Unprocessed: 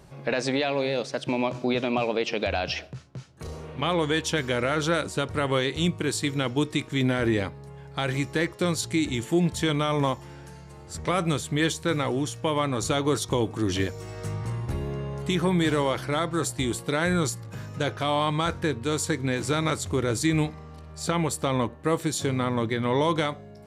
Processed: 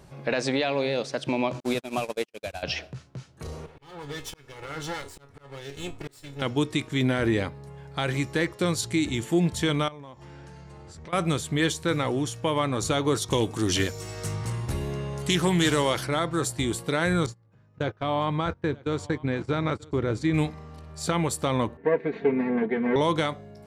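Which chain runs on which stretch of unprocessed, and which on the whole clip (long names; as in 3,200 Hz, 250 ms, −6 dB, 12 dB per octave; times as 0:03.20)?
0:01.60–0:02.63: linear delta modulator 64 kbit/s, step −30 dBFS + noise gate −25 dBFS, range −56 dB
0:03.66–0:06.42: lower of the sound and its delayed copy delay 2.3 ms + tuned comb filter 140 Hz, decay 0.25 s, mix 70% + volume swells 460 ms
0:09.88–0:11.13: downward compressor 8 to 1, threshold −40 dBFS + high-frequency loss of the air 59 metres
0:13.30–0:16.07: high-shelf EQ 3,500 Hz +11.5 dB + highs frequency-modulated by the lows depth 0.12 ms
0:17.26–0:20.34: noise gate −31 dBFS, range −21 dB + head-to-tape spacing loss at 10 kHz 21 dB + single-tap delay 935 ms −23 dB
0:21.77–0:22.96: lower of the sound and its delayed copy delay 0.48 ms + loudspeaker in its box 150–2,100 Hz, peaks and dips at 170 Hz −6 dB, 400 Hz +7 dB, 610 Hz −4 dB, 1,300 Hz −10 dB + comb filter 4.4 ms, depth 88%
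whole clip: no processing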